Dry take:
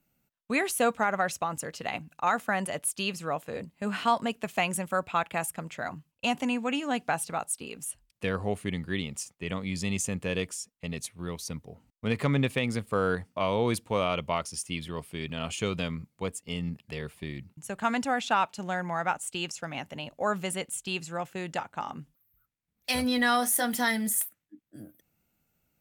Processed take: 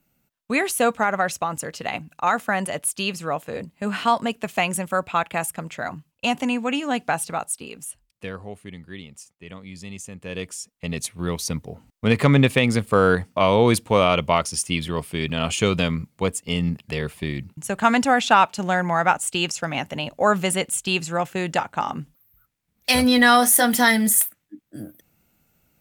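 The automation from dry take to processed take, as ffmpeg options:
-af "volume=22dB,afade=t=out:st=7.3:d=1.18:silence=0.251189,afade=t=in:st=10.17:d=0.28:silence=0.421697,afade=t=in:st=10.45:d=0.83:silence=0.354813"

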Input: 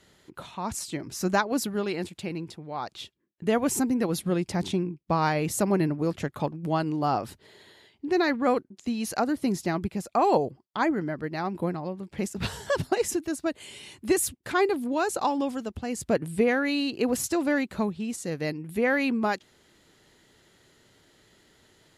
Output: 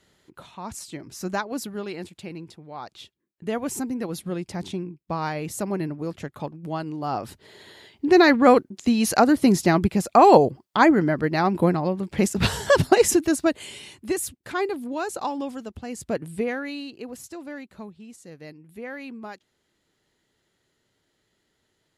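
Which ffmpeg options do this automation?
-af "volume=9dB,afade=t=in:st=7.05:d=1.02:silence=0.237137,afade=t=out:st=13.29:d=0.78:silence=0.266073,afade=t=out:st=16.3:d=0.77:silence=0.334965"

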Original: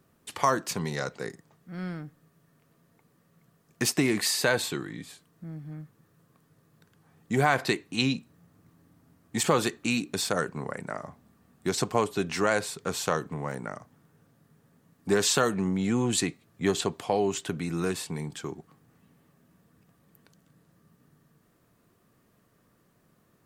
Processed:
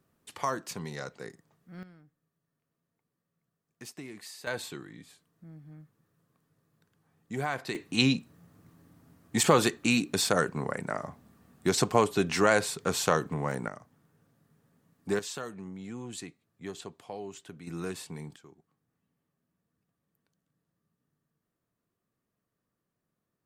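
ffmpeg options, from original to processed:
-af "asetnsamples=n=441:p=0,asendcmd='1.83 volume volume -19dB;4.47 volume volume -9dB;7.75 volume volume 2dB;13.68 volume volume -5dB;15.19 volume volume -14.5dB;17.67 volume volume -7dB;18.36 volume volume -18.5dB',volume=-7dB"

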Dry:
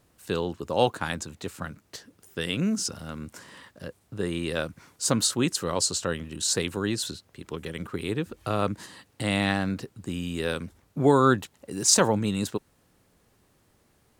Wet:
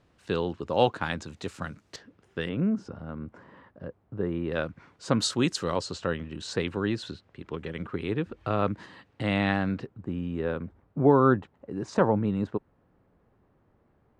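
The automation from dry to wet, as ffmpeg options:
-af "asetnsamples=n=441:p=0,asendcmd='1.26 lowpass f 6500;1.96 lowpass f 2600;2.49 lowpass f 1200;4.52 lowpass f 2500;5.2 lowpass f 5400;5.76 lowpass f 2700;9.87 lowpass f 1300',lowpass=3.9k"

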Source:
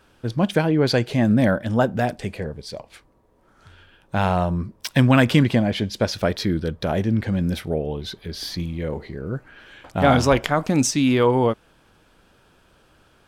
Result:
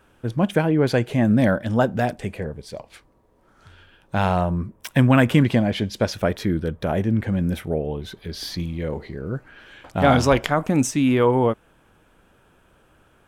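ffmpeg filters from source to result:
-af "asetnsamples=n=441:p=0,asendcmd='1.34 equalizer g -1;2.13 equalizer g -7.5;2.75 equalizer g -0.5;4.41 equalizer g -12;5.44 equalizer g -3;6.13 equalizer g -10.5;8.17 equalizer g -1;10.54 equalizer g -11.5',equalizer=f=4.6k:t=o:w=0.78:g=-9.5"

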